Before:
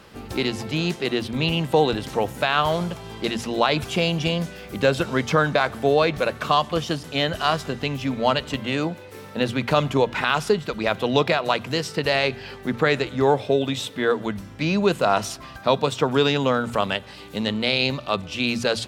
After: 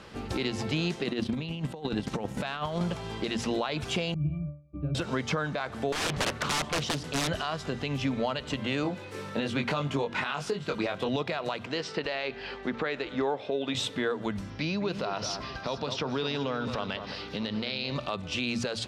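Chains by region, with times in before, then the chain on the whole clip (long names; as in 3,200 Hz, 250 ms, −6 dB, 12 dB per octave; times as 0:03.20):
0:01.01–0:02.81: parametric band 200 Hz +8 dB 0.69 octaves + transient designer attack −4 dB, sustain −12 dB + compressor whose output falls as the input rises −27 dBFS, ratio −0.5
0:04.14–0:04.95: noise gate −35 dBFS, range −22 dB + spectral tilt −3.5 dB per octave + resonances in every octave D, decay 0.38 s
0:05.92–0:07.29: wrap-around overflow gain 18.5 dB + highs frequency-modulated by the lows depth 0.41 ms
0:08.83–0:11.09: high-pass filter 96 Hz + double-tracking delay 21 ms −4 dB
0:11.66–0:13.75: low-pass filter 4,500 Hz + parametric band 110 Hz −13.5 dB 1.3 octaves
0:14.50–0:17.96: high shelf with overshoot 6,500 Hz −7.5 dB, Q 3 + downward compressor 2.5 to 1, threshold −30 dBFS + delay that swaps between a low-pass and a high-pass 214 ms, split 2,000 Hz, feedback 58%, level −9.5 dB
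whole clip: downward compressor 6 to 1, threshold −25 dBFS; low-pass filter 8,000 Hz 12 dB per octave; brickwall limiter −19 dBFS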